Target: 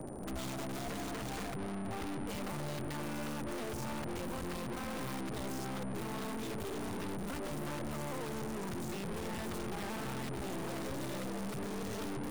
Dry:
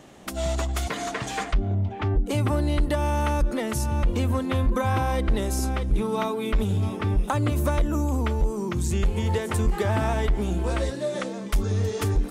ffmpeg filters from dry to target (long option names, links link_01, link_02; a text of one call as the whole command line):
ffmpeg -i in.wav -filter_complex "[0:a]afftfilt=real='re*lt(hypot(re,im),0.282)':imag='im*lt(hypot(re,im),0.282)':win_size=1024:overlap=0.75,acrossover=split=270|5400[link_01][link_02][link_03];[link_01]acompressor=threshold=-36dB:ratio=4[link_04];[link_02]acompressor=threshold=-36dB:ratio=4[link_05];[link_03]acompressor=threshold=-53dB:ratio=4[link_06];[link_04][link_05][link_06]amix=inputs=3:normalize=0,acrossover=split=200|840[link_07][link_08][link_09];[link_09]acrusher=bits=5:dc=4:mix=0:aa=0.000001[link_10];[link_07][link_08][link_10]amix=inputs=3:normalize=0,aeval=exprs='(tanh(282*val(0)+0.65)-tanh(0.65))/282':channel_layout=same,aeval=exprs='val(0)+0.000398*sin(2*PI*9000*n/s)':channel_layout=same,volume=10.5dB" out.wav